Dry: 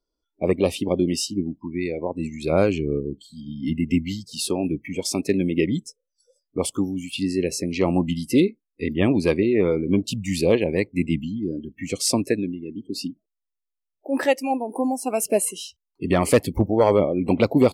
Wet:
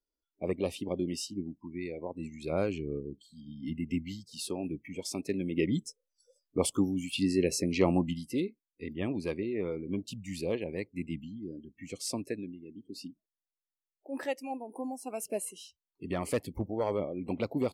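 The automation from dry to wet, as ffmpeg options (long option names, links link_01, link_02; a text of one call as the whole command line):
ffmpeg -i in.wav -af "volume=-4dB,afade=type=in:start_time=5.46:duration=0.4:silence=0.421697,afade=type=out:start_time=7.8:duration=0.49:silence=0.316228" out.wav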